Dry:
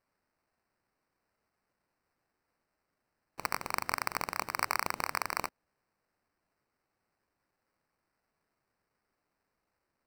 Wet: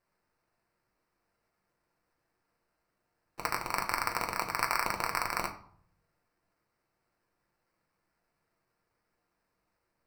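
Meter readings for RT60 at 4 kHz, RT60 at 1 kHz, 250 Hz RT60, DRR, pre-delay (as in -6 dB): 0.40 s, 0.60 s, 0.80 s, 2.0 dB, 6 ms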